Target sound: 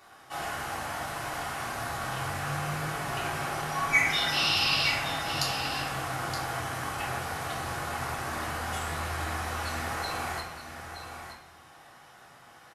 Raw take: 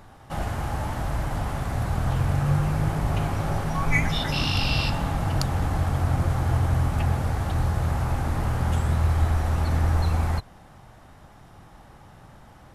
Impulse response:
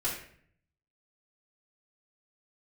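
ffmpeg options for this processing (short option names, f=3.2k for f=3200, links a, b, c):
-filter_complex "[0:a]highpass=f=1.5k:p=1,aecho=1:1:921:0.355[a];[1:a]atrim=start_sample=2205[b];[a][b]afir=irnorm=-1:irlink=0,volume=-1dB"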